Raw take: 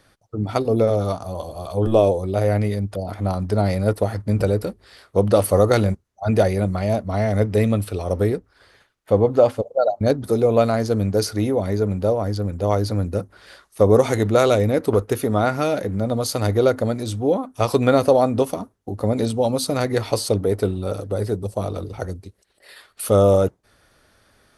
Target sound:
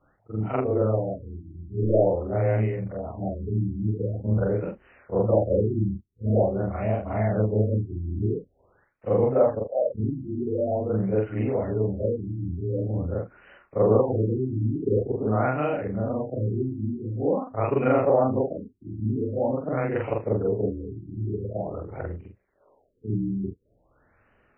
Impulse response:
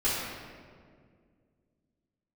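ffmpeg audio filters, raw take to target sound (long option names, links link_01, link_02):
-af "afftfilt=real='re':imag='-im':win_size=4096:overlap=0.75,afftfilt=real='re*lt(b*sr/1024,350*pow(3100/350,0.5+0.5*sin(2*PI*0.46*pts/sr)))':imag='im*lt(b*sr/1024,350*pow(3100/350,0.5+0.5*sin(2*PI*0.46*pts/sr)))':win_size=1024:overlap=0.75"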